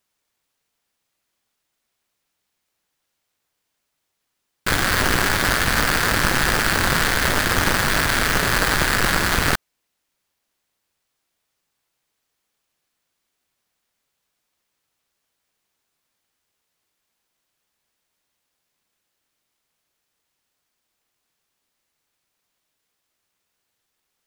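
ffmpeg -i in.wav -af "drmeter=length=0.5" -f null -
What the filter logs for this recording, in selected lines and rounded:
Channel 1: DR: 6.2
Overall DR: 6.2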